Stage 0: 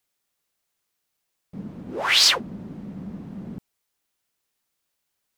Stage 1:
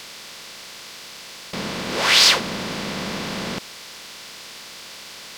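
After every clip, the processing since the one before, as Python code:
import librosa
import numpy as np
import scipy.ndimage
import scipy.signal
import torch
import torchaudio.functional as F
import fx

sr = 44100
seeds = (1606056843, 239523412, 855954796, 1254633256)

y = fx.bin_compress(x, sr, power=0.4)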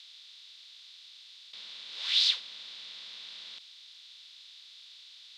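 y = fx.bandpass_q(x, sr, hz=3700.0, q=5.3)
y = y * librosa.db_to_amplitude(-5.5)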